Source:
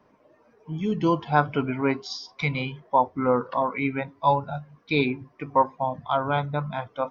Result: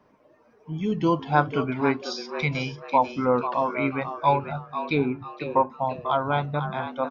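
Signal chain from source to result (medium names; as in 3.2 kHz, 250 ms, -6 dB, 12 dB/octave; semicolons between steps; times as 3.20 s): 4.35–5.70 s: low-pass that closes with the level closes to 1.1 kHz, closed at -17.5 dBFS; frequency-shifting echo 493 ms, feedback 33%, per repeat +110 Hz, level -10 dB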